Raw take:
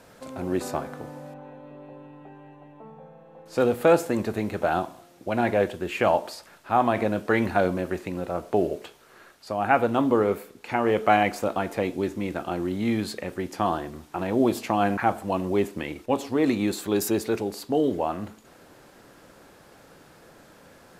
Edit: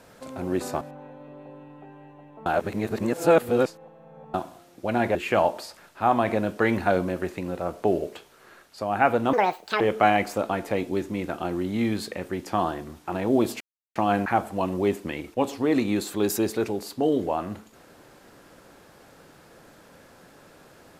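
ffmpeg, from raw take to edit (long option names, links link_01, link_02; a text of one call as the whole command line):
ffmpeg -i in.wav -filter_complex "[0:a]asplit=8[link_01][link_02][link_03][link_04][link_05][link_06][link_07][link_08];[link_01]atrim=end=0.812[link_09];[link_02]atrim=start=1.238:end=2.892[link_10];[link_03]atrim=start=2.888:end=4.772,asetpts=PTS-STARTPTS,areverse[link_11];[link_04]atrim=start=4.768:end=5.582[link_12];[link_05]atrim=start=5.838:end=10.024[link_13];[link_06]atrim=start=10.02:end=10.87,asetpts=PTS-STARTPTS,asetrate=78939,aresample=44100,atrim=end_sample=20941,asetpts=PTS-STARTPTS[link_14];[link_07]atrim=start=10.866:end=14.67,asetpts=PTS-STARTPTS,afade=type=out:start_time=3.8:duration=0.004:curve=hsin,apad=pad_dur=0.35[link_15];[link_08]atrim=start=14.67,asetpts=PTS-STARTPTS,afade=type=in:duration=0.004:curve=hsin[link_16];[link_09][link_10]acrossfade=duration=0.004:curve1=hsin:curve2=hsin[link_17];[link_17][link_11]acrossfade=duration=0.004:curve1=hsin:curve2=hsin[link_18];[link_18][link_12]acrossfade=duration=0.004:curve1=hsin:curve2=hsin[link_19];[link_19][link_13]acrossfade=duration=0.004:curve1=hsin:curve2=hsin[link_20];[link_20][link_14]acrossfade=duration=0.004:curve1=hsin:curve2=hsin[link_21];[link_15][link_16]concat=n=2:v=0:a=1[link_22];[link_21][link_22]acrossfade=duration=0.004:curve1=hsin:curve2=hsin" out.wav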